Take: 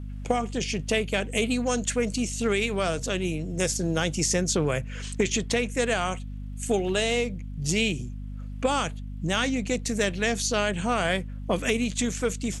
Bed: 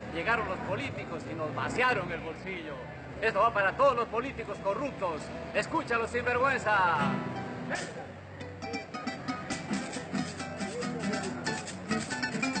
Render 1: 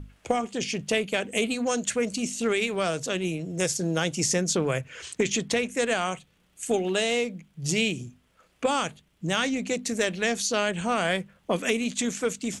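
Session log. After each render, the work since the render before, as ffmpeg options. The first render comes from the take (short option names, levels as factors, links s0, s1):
-af "bandreject=f=50:t=h:w=6,bandreject=f=100:t=h:w=6,bandreject=f=150:t=h:w=6,bandreject=f=200:t=h:w=6,bandreject=f=250:t=h:w=6"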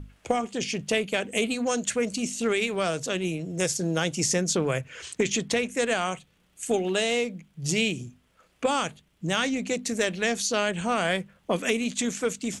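-af anull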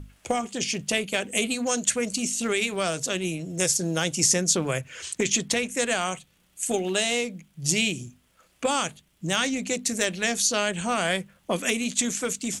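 -af "aemphasis=mode=production:type=cd,bandreject=f=450:w=12"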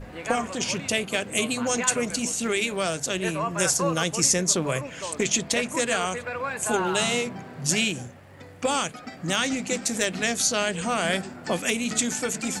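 -filter_complex "[1:a]volume=0.668[s0];[0:a][s0]amix=inputs=2:normalize=0"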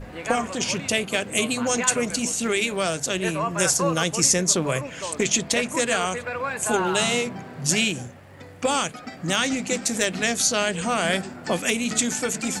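-af "volume=1.26"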